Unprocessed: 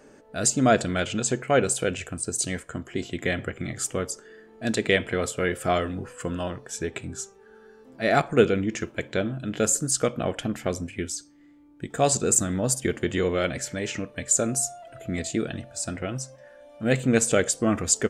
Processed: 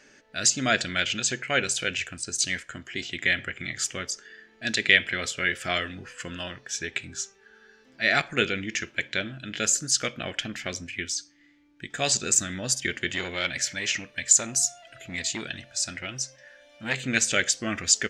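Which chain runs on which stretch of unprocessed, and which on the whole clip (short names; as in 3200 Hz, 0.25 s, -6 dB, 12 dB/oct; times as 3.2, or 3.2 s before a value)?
13.1–17.01 high shelf 6300 Hz +5.5 dB + core saturation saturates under 1400 Hz
whole clip: band shelf 3200 Hz +15 dB 2.4 oct; notch 460 Hz, Q 12; gain -8 dB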